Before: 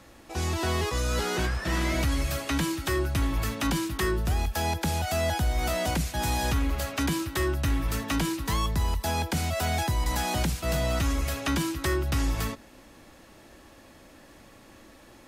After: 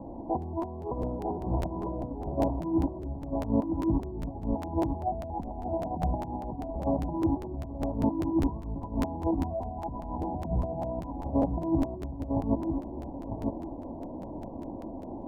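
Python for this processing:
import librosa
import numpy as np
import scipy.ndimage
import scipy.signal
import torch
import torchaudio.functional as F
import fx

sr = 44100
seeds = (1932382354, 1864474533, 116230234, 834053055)

y = fx.hum_notches(x, sr, base_hz=60, count=3)
y = fx.over_compress(y, sr, threshold_db=-34.0, ratio=-0.5)
y = scipy.signal.sosfilt(scipy.signal.cheby1(6, 6, 1000.0, 'lowpass', fs=sr, output='sos'), y)
y = fx.echo_feedback(y, sr, ms=951, feedback_pct=19, wet_db=-5.0)
y = fx.buffer_crackle(y, sr, first_s=0.41, period_s=0.2, block=512, kind='repeat')
y = y * librosa.db_to_amplitude(8.0)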